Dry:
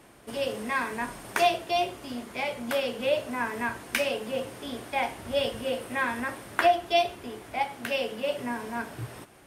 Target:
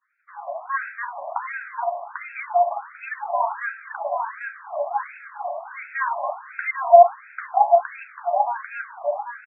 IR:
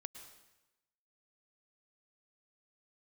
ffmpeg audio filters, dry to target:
-filter_complex "[0:a]aemphasis=mode=reproduction:type=riaa,agate=range=-33dB:threshold=-37dB:ratio=3:detection=peak,equalizer=f=610:w=1.1:g=13.5,acrossover=split=1400[a][b];[a]flanger=delay=0.3:depth=9.5:regen=51:speed=1.1:shape=triangular[c];[b]alimiter=level_in=1.5dB:limit=-24dB:level=0:latency=1:release=233,volume=-1.5dB[d];[c][d]amix=inputs=2:normalize=0,asoftclip=type=tanh:threshold=-6dB,aecho=1:1:794|1588|2382|3176:0.631|0.164|0.0427|0.0111,asplit=2[e][f];[1:a]atrim=start_sample=2205[g];[f][g]afir=irnorm=-1:irlink=0,volume=-5dB[h];[e][h]amix=inputs=2:normalize=0,afftfilt=real='re*between(b*sr/1024,810*pow(1900/810,0.5+0.5*sin(2*PI*1.4*pts/sr))/1.41,810*pow(1900/810,0.5+0.5*sin(2*PI*1.4*pts/sr))*1.41)':imag='im*between(b*sr/1024,810*pow(1900/810,0.5+0.5*sin(2*PI*1.4*pts/sr))/1.41,810*pow(1900/810,0.5+0.5*sin(2*PI*1.4*pts/sr))*1.41)':win_size=1024:overlap=0.75,volume=4dB"

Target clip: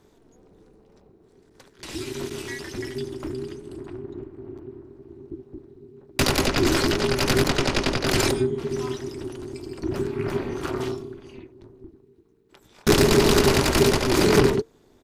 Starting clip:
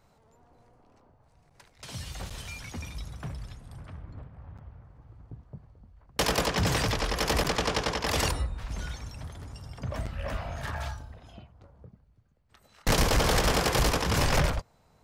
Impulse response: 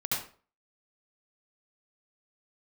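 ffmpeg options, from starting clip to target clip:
-af "aecho=1:1:2.1:0.3,tremolo=f=260:d=0.919,afreqshift=-450,volume=9dB"

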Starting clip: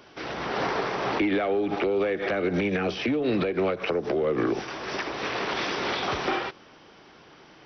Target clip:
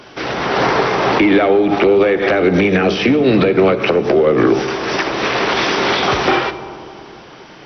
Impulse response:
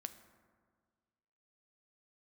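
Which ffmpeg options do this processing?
-filter_complex "[0:a]acontrast=50,asplit=2[a][b];[1:a]atrim=start_sample=2205,asetrate=26460,aresample=44100[c];[b][c]afir=irnorm=-1:irlink=0,volume=11dB[d];[a][d]amix=inputs=2:normalize=0,volume=-5.5dB"

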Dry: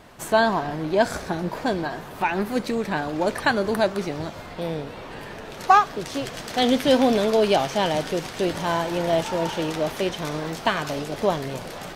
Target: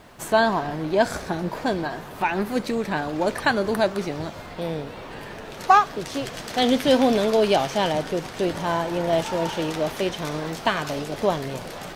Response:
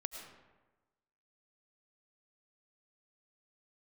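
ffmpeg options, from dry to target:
-filter_complex "[0:a]acrusher=bits=10:mix=0:aa=0.000001,asplit=3[a][b][c];[a]afade=t=out:st=7.91:d=0.02[d];[b]adynamicequalizer=threshold=0.0126:dfrequency=1900:dqfactor=0.7:tfrequency=1900:tqfactor=0.7:attack=5:release=100:ratio=0.375:range=2:mode=cutabove:tftype=highshelf,afade=t=in:st=7.91:d=0.02,afade=t=out:st=9.11:d=0.02[e];[c]afade=t=in:st=9.11:d=0.02[f];[d][e][f]amix=inputs=3:normalize=0"

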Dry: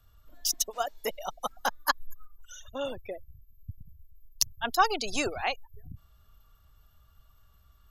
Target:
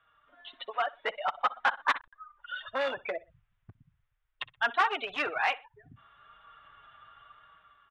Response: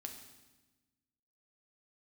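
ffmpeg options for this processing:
-filter_complex "[0:a]dynaudnorm=f=480:g=5:m=13dB,aresample=8000,aeval=exprs='(mod(2.11*val(0)+1,2)-1)/2.11':c=same,aresample=44100,flanger=delay=6.2:depth=1.5:regen=-19:speed=0.93:shape=triangular,asplit=2[a][b];[b]acompressor=threshold=-34dB:ratio=16,volume=2dB[c];[a][c]amix=inputs=2:normalize=0,aecho=1:1:62|124:0.0891|0.0294,asoftclip=type=hard:threshold=-22dB,bandpass=f=1.5k:t=q:w=1.4:csg=0,volume=5.5dB"

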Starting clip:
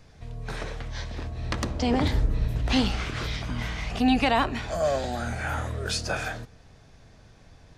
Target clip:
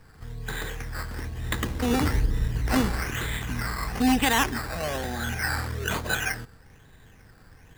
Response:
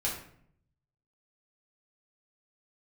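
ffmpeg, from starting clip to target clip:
-af "superequalizer=8b=0.398:11b=2.24,acrusher=samples=11:mix=1:aa=0.000001:lfo=1:lforange=6.6:lforate=1.1"

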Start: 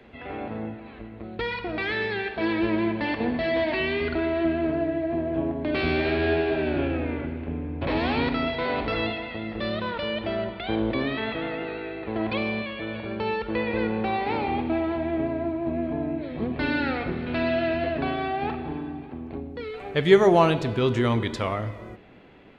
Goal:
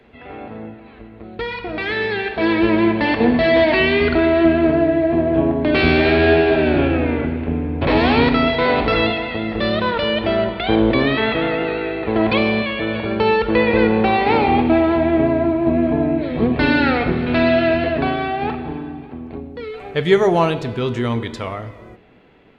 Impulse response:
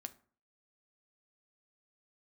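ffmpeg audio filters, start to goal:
-filter_complex "[0:a]dynaudnorm=f=260:g=17:m=11.5dB,asplit=2[a][b];[1:a]atrim=start_sample=2205,asetrate=83790,aresample=44100[c];[b][c]afir=irnorm=-1:irlink=0,volume=11dB[d];[a][d]amix=inputs=2:normalize=0,volume=-6dB"

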